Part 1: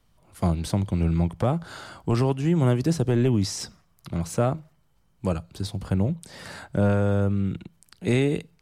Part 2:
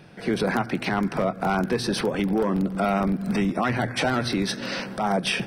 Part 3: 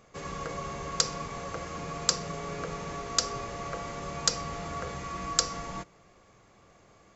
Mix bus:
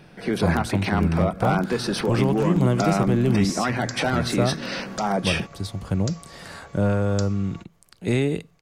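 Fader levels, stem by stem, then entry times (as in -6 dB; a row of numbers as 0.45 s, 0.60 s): 0.0 dB, 0.0 dB, -10.5 dB; 0.00 s, 0.00 s, 1.80 s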